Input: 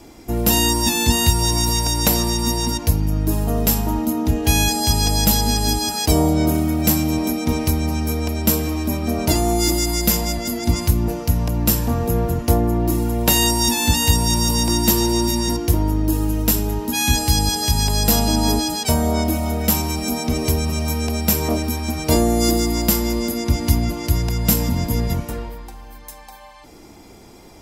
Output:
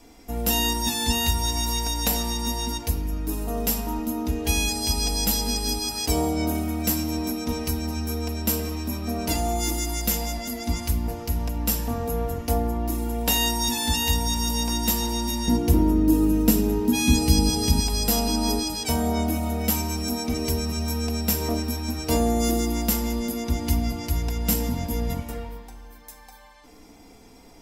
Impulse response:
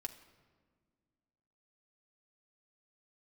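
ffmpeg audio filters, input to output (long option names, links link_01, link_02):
-filter_complex "[0:a]asetnsamples=nb_out_samples=441:pad=0,asendcmd='15.48 equalizer g 8;17.8 equalizer g -2',equalizer=frequency=190:width_type=o:width=2.9:gain=-4.5[link_01];[1:a]atrim=start_sample=2205,afade=type=out:start_time=0.35:duration=0.01,atrim=end_sample=15876[link_02];[link_01][link_02]afir=irnorm=-1:irlink=0,volume=-2.5dB"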